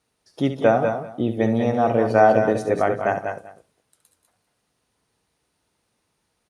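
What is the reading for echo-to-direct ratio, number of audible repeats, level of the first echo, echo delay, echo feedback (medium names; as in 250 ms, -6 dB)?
-4.5 dB, 4, -10.5 dB, 69 ms, no regular repeats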